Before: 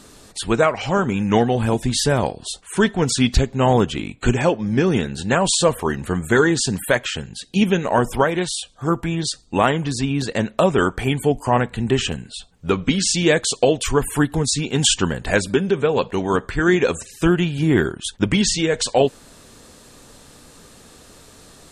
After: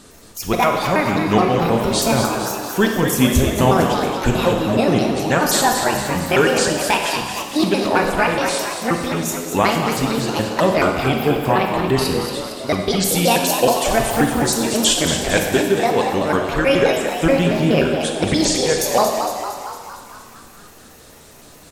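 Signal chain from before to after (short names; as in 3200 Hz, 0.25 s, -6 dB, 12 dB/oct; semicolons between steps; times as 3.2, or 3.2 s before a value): trilling pitch shifter +7.5 st, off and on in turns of 0.106 s; frequency-shifting echo 0.229 s, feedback 59%, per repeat +86 Hz, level -7.5 dB; Schroeder reverb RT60 1.3 s, combs from 31 ms, DRR 4 dB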